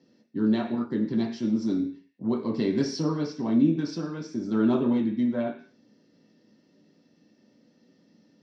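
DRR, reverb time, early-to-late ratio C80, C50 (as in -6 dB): -1.0 dB, 0.45 s, 14.0 dB, 9.5 dB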